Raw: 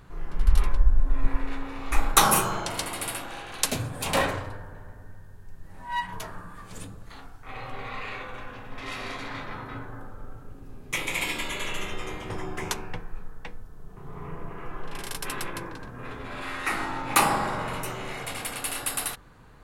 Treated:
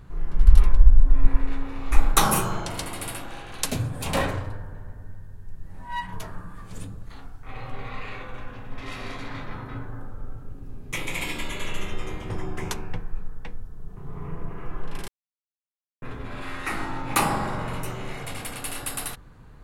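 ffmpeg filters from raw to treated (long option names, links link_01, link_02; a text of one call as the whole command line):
ffmpeg -i in.wav -filter_complex "[0:a]asplit=3[link_01][link_02][link_03];[link_01]atrim=end=15.08,asetpts=PTS-STARTPTS,afade=type=out:start_time=15.076:duration=0.004:curve=hsin[link_04];[link_02]atrim=start=15.08:end=16.02,asetpts=PTS-STARTPTS,volume=0[link_05];[link_03]atrim=start=16.02,asetpts=PTS-STARTPTS,afade=type=in:duration=0.004:curve=hsin[link_06];[link_04][link_05][link_06]concat=n=3:v=0:a=1,lowshelf=frequency=260:gain=9,volume=-2.5dB" out.wav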